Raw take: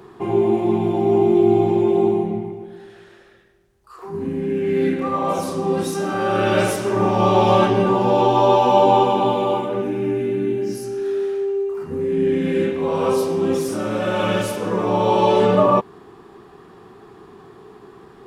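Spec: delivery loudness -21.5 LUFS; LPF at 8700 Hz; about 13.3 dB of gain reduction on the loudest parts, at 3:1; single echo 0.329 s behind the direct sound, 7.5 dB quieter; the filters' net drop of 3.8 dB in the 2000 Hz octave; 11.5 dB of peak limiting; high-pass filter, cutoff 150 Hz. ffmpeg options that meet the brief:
-af "highpass=150,lowpass=8.7k,equalizer=f=2k:t=o:g=-5.5,acompressor=threshold=-30dB:ratio=3,alimiter=level_in=4.5dB:limit=-24dB:level=0:latency=1,volume=-4.5dB,aecho=1:1:329:0.422,volume=14dB"

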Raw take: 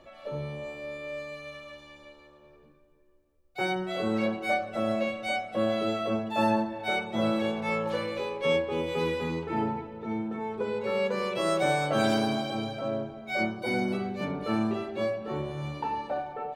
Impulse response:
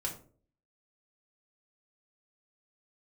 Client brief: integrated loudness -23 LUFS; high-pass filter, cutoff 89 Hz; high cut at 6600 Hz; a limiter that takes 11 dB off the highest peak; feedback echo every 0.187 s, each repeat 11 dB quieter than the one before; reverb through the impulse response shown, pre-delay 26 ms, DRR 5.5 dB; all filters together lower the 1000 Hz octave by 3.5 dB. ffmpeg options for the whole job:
-filter_complex "[0:a]highpass=89,lowpass=6.6k,equalizer=f=1k:t=o:g=-5,alimiter=level_in=2.5dB:limit=-24dB:level=0:latency=1,volume=-2.5dB,aecho=1:1:187|374|561:0.282|0.0789|0.0221,asplit=2[a][b];[1:a]atrim=start_sample=2205,adelay=26[c];[b][c]afir=irnorm=-1:irlink=0,volume=-7dB[d];[a][d]amix=inputs=2:normalize=0,volume=11dB"

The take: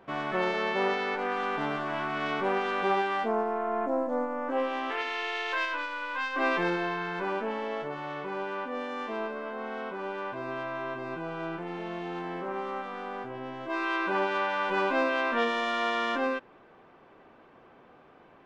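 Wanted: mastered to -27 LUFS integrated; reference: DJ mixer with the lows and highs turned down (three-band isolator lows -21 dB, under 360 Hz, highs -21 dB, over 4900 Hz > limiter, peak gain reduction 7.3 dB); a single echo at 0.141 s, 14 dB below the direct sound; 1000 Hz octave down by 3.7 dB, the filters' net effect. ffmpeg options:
-filter_complex "[0:a]acrossover=split=360 4900:gain=0.0891 1 0.0891[a][b][c];[a][b][c]amix=inputs=3:normalize=0,equalizer=f=1k:t=o:g=-4.5,aecho=1:1:141:0.2,volume=8dB,alimiter=limit=-15.5dB:level=0:latency=1"

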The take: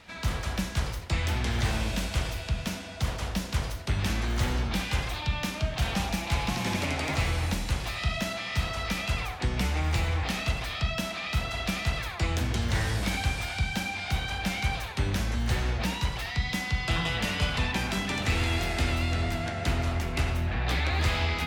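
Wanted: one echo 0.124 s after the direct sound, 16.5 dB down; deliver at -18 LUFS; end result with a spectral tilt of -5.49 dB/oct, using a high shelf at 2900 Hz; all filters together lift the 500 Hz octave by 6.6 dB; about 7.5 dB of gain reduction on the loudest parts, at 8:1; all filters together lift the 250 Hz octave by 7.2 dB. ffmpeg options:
-af "equalizer=f=250:t=o:g=8,equalizer=f=500:t=o:g=7,highshelf=f=2.9k:g=-9,acompressor=threshold=-28dB:ratio=8,aecho=1:1:124:0.15,volume=15.5dB"

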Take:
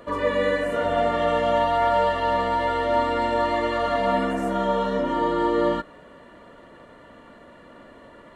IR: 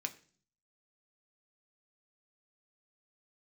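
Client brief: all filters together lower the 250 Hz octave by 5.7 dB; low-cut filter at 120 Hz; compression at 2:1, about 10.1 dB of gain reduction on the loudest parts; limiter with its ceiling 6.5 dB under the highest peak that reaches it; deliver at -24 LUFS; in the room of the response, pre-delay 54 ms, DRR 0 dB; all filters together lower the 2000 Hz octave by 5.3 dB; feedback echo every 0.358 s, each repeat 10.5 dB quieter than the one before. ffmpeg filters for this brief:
-filter_complex "[0:a]highpass=120,equalizer=f=250:t=o:g=-7.5,equalizer=f=2k:t=o:g=-6.5,acompressor=threshold=-38dB:ratio=2,alimiter=level_in=5dB:limit=-24dB:level=0:latency=1,volume=-5dB,aecho=1:1:358|716|1074:0.299|0.0896|0.0269,asplit=2[a][b];[1:a]atrim=start_sample=2205,adelay=54[c];[b][c]afir=irnorm=-1:irlink=0,volume=0dB[d];[a][d]amix=inputs=2:normalize=0,volume=12dB"

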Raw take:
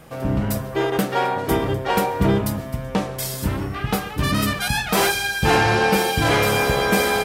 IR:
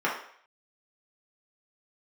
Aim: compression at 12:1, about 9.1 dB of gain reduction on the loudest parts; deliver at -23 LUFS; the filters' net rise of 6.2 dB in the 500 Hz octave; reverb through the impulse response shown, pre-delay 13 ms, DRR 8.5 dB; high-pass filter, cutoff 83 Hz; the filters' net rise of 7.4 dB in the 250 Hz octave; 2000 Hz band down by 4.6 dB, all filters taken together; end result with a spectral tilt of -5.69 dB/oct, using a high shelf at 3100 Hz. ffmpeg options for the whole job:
-filter_complex "[0:a]highpass=83,equalizer=f=250:t=o:g=9,equalizer=f=500:t=o:g=5,equalizer=f=2k:t=o:g=-4.5,highshelf=f=3.1k:g=-6.5,acompressor=threshold=-18dB:ratio=12,asplit=2[a][b];[1:a]atrim=start_sample=2205,adelay=13[c];[b][c]afir=irnorm=-1:irlink=0,volume=-21.5dB[d];[a][d]amix=inputs=2:normalize=0,volume=0.5dB"

